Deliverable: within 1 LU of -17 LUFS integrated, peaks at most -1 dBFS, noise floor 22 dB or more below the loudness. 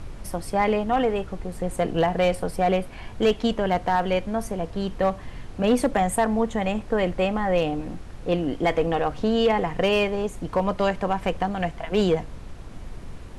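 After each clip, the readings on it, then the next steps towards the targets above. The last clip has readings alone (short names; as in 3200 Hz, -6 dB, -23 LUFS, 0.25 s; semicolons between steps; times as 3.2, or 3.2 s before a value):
clipped 0.4%; flat tops at -13.0 dBFS; noise floor -40 dBFS; noise floor target -47 dBFS; loudness -24.5 LUFS; peak -13.0 dBFS; loudness target -17.0 LUFS
-> clip repair -13 dBFS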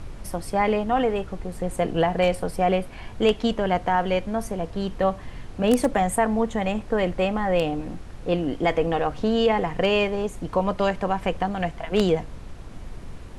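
clipped 0.0%; noise floor -40 dBFS; noise floor target -46 dBFS
-> noise print and reduce 6 dB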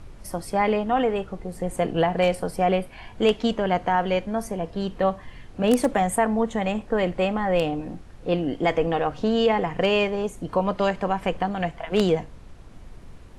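noise floor -45 dBFS; noise floor target -46 dBFS
-> noise print and reduce 6 dB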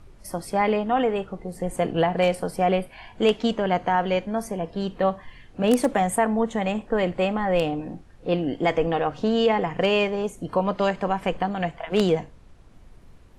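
noise floor -50 dBFS; loudness -24.0 LUFS; peak -4.5 dBFS; loudness target -17.0 LUFS
-> gain +7 dB; limiter -1 dBFS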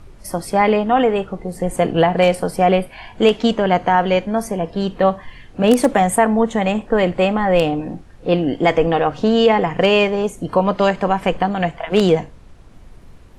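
loudness -17.5 LUFS; peak -1.0 dBFS; noise floor -43 dBFS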